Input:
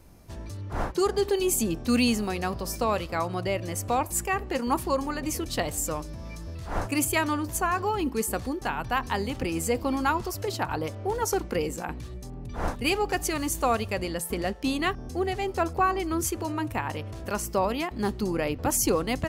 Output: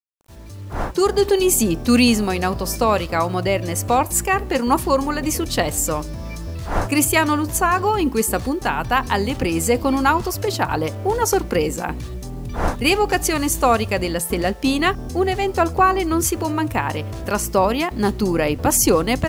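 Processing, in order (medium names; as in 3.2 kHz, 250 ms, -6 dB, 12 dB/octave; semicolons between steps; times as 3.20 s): fade-in on the opening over 1.23 s; bit crusher 10-bit; trim +8.5 dB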